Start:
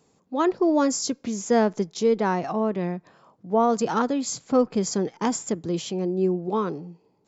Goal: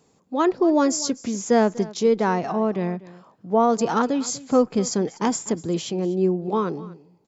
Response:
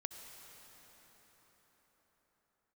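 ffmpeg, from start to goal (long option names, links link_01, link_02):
-af "aecho=1:1:245:0.112,volume=2dB"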